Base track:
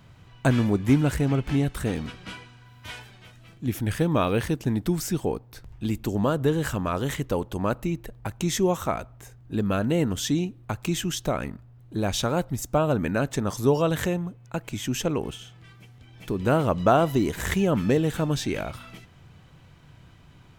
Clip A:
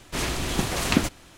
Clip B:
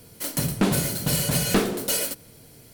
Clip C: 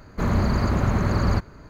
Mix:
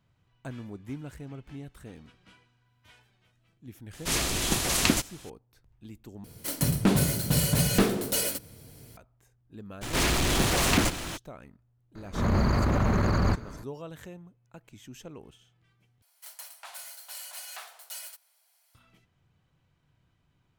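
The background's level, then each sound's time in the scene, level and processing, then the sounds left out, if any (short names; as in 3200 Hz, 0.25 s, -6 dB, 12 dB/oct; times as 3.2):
base track -18.5 dB
3.93 add A -3.5 dB + high shelf 3600 Hz +10 dB
6.24 replace with B -3 dB + bell 73 Hz +7 dB 2.2 oct
9.81 add A -7.5 dB, fades 0.02 s + power-law curve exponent 0.5
11.95 add C -2 dB + transient shaper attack -11 dB, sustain +4 dB
16.02 replace with B -15.5 dB + steep high-pass 690 Hz 48 dB/oct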